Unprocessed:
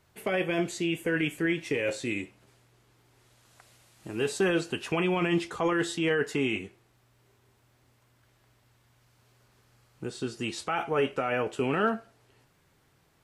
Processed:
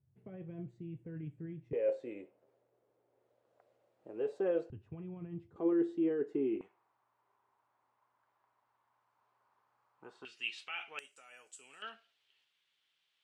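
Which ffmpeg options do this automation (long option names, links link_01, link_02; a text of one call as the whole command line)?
ffmpeg -i in.wav -af "asetnsamples=nb_out_samples=441:pad=0,asendcmd='1.73 bandpass f 530;4.7 bandpass f 100;5.56 bandpass f 350;6.61 bandpass f 980;10.25 bandpass f 2700;10.99 bandpass f 7800;11.82 bandpass f 3200',bandpass=frequency=120:width_type=q:width=3.7:csg=0" out.wav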